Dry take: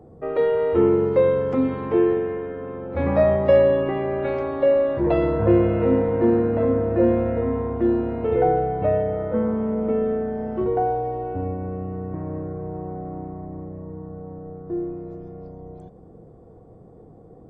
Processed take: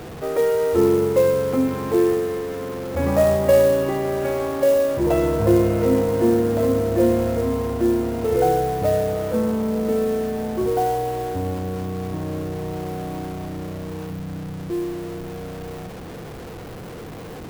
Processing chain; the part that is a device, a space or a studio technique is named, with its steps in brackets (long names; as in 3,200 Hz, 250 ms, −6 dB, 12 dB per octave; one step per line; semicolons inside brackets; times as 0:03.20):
0:14.10–0:14.70: octave-band graphic EQ 125/250/500/1,000 Hz +5/+5/−10/−9 dB
early CD player with a faulty converter (converter with a step at zero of −31.5 dBFS; converter with an unsteady clock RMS 0.024 ms)